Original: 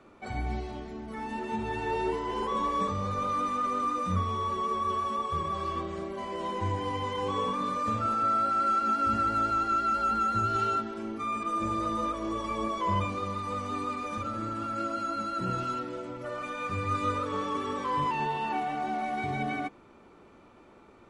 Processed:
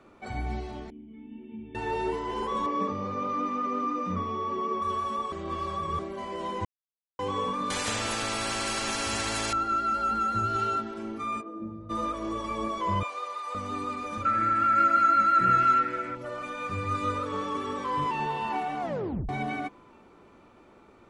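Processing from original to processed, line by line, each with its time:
0:00.90–0:01.75: formant resonators in series i
0:02.66–0:04.82: loudspeaker in its box 140–5,300 Hz, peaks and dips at 270 Hz +7 dB, 380 Hz +4 dB, 1,500 Hz −5 dB, 3,800 Hz −10 dB
0:05.32–0:05.99: reverse
0:06.65–0:07.19: silence
0:07.70–0:09.53: every bin compressed towards the loudest bin 4 to 1
0:11.40–0:11.89: resonant band-pass 520 Hz → 100 Hz, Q 1.6
0:13.03–0:13.55: high-pass filter 550 Hz 24 dB per octave
0:14.25–0:16.15: flat-topped bell 1,800 Hz +14 dB 1.1 octaves
0:17.52–0:18.22: delay throw 450 ms, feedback 45%, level −11.5 dB
0:18.81: tape stop 0.48 s

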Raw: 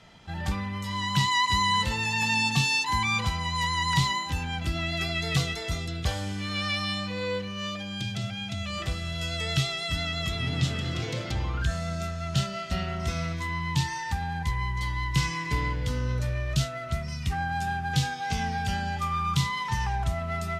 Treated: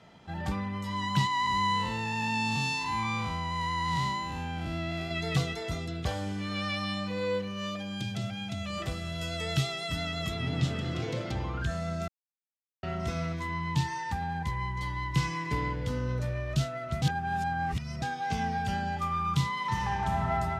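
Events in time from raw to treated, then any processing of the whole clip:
0:01.27–0:05.11: spectrum smeared in time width 180 ms
0:07.06–0:10.34: high-shelf EQ 8,200 Hz +8 dB
0:12.08–0:12.83: silence
0:17.02–0:18.02: reverse
0:19.57–0:20.23: thrown reverb, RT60 2.8 s, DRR −0.5 dB
whole clip: high-pass filter 170 Hz 6 dB per octave; tilt shelving filter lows +5 dB, about 1,400 Hz; level −2.5 dB

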